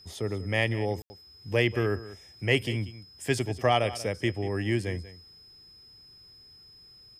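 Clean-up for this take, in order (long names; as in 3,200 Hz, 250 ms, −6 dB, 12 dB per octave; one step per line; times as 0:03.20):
notch filter 5,100 Hz, Q 30
ambience match 0:01.02–0:01.10
echo removal 188 ms −16 dB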